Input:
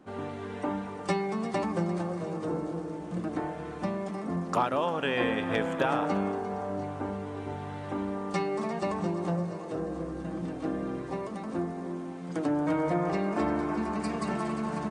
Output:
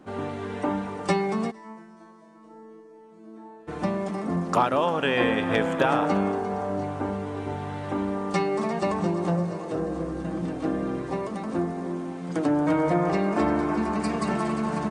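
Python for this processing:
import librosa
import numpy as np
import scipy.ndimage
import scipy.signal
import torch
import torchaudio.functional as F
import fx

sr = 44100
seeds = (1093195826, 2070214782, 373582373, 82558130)

y = fx.resonator_bank(x, sr, root=57, chord='fifth', decay_s=0.79, at=(1.5, 3.67), fade=0.02)
y = y * 10.0 ** (5.0 / 20.0)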